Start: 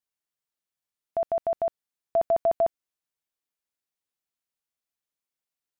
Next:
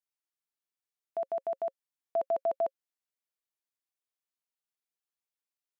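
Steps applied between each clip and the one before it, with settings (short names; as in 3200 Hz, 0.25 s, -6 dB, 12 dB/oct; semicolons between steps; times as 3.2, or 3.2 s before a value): HPF 290 Hz 12 dB/oct; notch 540 Hz, Q 12; gain -6 dB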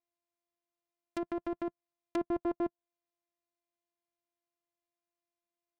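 sample sorter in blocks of 128 samples; treble ducked by the level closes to 890 Hz, closed at -29.5 dBFS; gain -2 dB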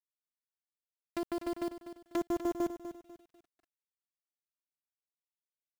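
bit-crush 8-bit; lo-fi delay 0.247 s, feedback 35%, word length 10-bit, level -11 dB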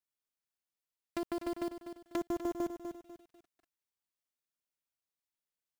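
compressor 2:1, threshold -35 dBFS, peak gain reduction 4 dB; gain +1 dB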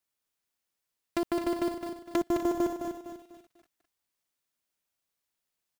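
echo 0.211 s -7 dB; gain +7 dB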